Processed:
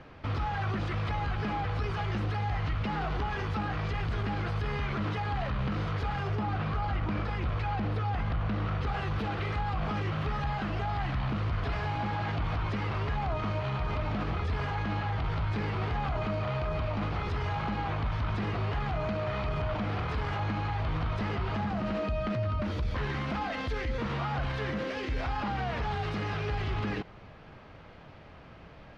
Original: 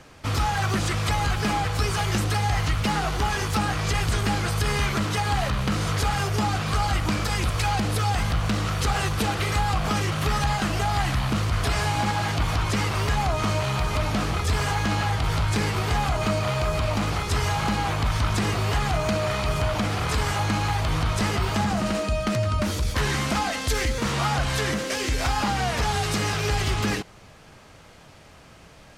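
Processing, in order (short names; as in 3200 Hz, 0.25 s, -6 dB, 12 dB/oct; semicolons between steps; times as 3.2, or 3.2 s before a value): 6.35–8.87 high shelf 4100 Hz -8 dB; limiter -22.5 dBFS, peak gain reduction 9 dB; air absorption 310 m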